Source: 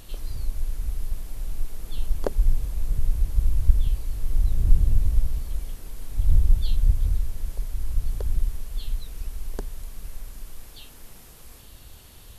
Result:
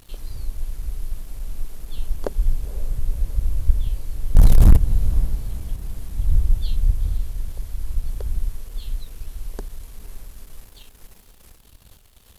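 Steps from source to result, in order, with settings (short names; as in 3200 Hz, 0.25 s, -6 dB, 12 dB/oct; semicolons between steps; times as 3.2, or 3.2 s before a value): crossover distortion -47 dBFS; 4.35–4.77 sample leveller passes 5; diffused feedback echo 0.501 s, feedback 58%, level -15 dB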